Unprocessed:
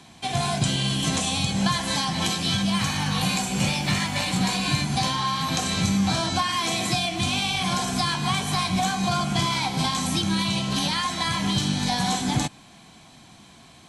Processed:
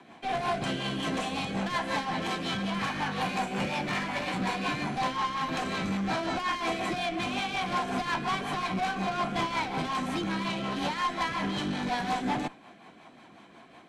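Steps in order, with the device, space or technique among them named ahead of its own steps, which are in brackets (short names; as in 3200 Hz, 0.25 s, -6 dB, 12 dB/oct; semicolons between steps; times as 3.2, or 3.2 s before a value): three-band isolator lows -19 dB, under 250 Hz, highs -20 dB, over 2400 Hz; overdriven rotary cabinet (tube stage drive 29 dB, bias 0.35; rotary speaker horn 5.5 Hz); gain +6 dB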